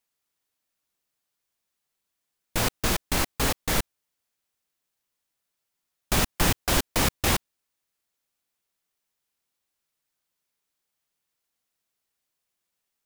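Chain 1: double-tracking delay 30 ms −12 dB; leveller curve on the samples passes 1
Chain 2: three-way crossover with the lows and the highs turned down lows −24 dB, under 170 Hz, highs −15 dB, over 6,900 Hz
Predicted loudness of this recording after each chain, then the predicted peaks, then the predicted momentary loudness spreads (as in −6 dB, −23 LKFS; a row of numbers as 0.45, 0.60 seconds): −22.0, −28.5 LKFS; −8.0, −13.0 dBFS; 5, 5 LU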